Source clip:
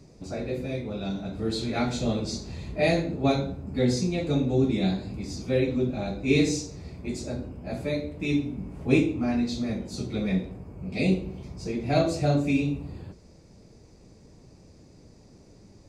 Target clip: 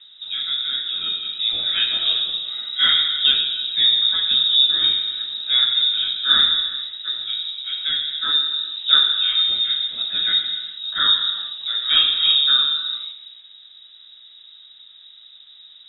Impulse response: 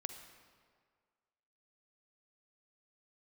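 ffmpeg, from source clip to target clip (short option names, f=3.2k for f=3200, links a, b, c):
-filter_complex "[0:a]asettb=1/sr,asplit=3[a][b][c];[a]atrim=end=9.624[d];[b]atrim=start=9.62:end=12.07,asetpts=PTS-STARTPTS,afade=t=in:d=0.004:c=qsin,afade=t=out:st=2.446:d=0.004:c=qsin,adynamicequalizer=threshold=0.00631:dfrequency=3000:dqfactor=0.76:tfrequency=3000:tqfactor=0.76:attack=5:release=100:ratio=0.375:range=2:mode=boostabove:tftype=bell[e];[c]atrim=start=12.066[f];[d][e]acrossfade=d=0.004:c1=hsin:c2=qsin[g];[g][f]acrossfade=d=0.004:c1=qsin:c2=hsin[h];[1:a]atrim=start_sample=2205,afade=t=out:st=0.34:d=0.01,atrim=end_sample=15435,asetrate=29547,aresample=44100[i];[h][i]afir=irnorm=-1:irlink=0,lowpass=f=3.3k:t=q:w=0.5098,lowpass=f=3.3k:t=q:w=0.6013,lowpass=f=3.3k:t=q:w=0.9,lowpass=f=3.3k:t=q:w=2.563,afreqshift=-3900,volume=6.5dB"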